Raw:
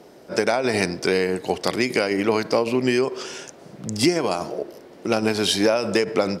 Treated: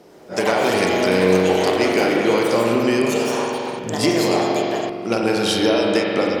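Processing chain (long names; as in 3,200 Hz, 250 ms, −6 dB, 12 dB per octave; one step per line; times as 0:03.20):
spring reverb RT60 3.1 s, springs 43 ms, chirp 20 ms, DRR −1.5 dB
delay with pitch and tempo change per echo 99 ms, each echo +5 semitones, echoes 3, each echo −6 dB
level −1 dB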